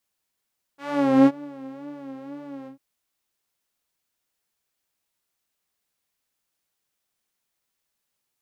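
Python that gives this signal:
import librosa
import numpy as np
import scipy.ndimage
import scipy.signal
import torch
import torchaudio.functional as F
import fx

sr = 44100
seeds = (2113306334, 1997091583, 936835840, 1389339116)

y = fx.sub_patch_vibrato(sr, seeds[0], note=61, wave='saw', wave2='saw', interval_st=0, detune_cents=28, level2_db=-9.0, sub_db=-19.5, noise_db=-17, kind='bandpass', cutoff_hz=130.0, q=0.72, env_oct=3.5, env_decay_s=0.31, env_sustain_pct=40, attack_ms=482.0, decay_s=0.05, sustain_db=-23.5, release_s=0.11, note_s=1.89, lfo_hz=2.0, vibrato_cents=76)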